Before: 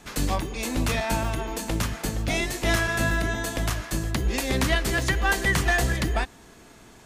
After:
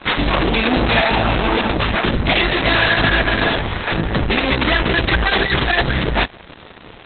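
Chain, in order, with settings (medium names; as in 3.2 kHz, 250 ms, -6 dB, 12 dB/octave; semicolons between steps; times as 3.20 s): bass shelf 150 Hz -6 dB; fuzz box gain 40 dB, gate -49 dBFS; Opus 6 kbps 48 kHz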